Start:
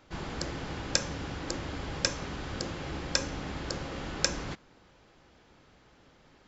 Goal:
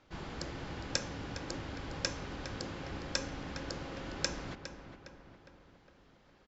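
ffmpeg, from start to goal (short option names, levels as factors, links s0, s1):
-filter_complex "[0:a]lowpass=7100,asplit=2[s0][s1];[s1]adelay=409,lowpass=f=3100:p=1,volume=0.355,asplit=2[s2][s3];[s3]adelay=409,lowpass=f=3100:p=1,volume=0.54,asplit=2[s4][s5];[s5]adelay=409,lowpass=f=3100:p=1,volume=0.54,asplit=2[s6][s7];[s7]adelay=409,lowpass=f=3100:p=1,volume=0.54,asplit=2[s8][s9];[s9]adelay=409,lowpass=f=3100:p=1,volume=0.54,asplit=2[s10][s11];[s11]adelay=409,lowpass=f=3100:p=1,volume=0.54[s12];[s2][s4][s6][s8][s10][s12]amix=inputs=6:normalize=0[s13];[s0][s13]amix=inputs=2:normalize=0,volume=0.531"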